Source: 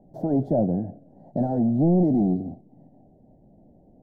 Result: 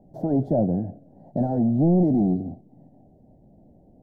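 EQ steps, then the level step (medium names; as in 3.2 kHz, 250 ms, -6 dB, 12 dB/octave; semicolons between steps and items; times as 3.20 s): peaking EQ 78 Hz +3.5 dB 1.4 oct; 0.0 dB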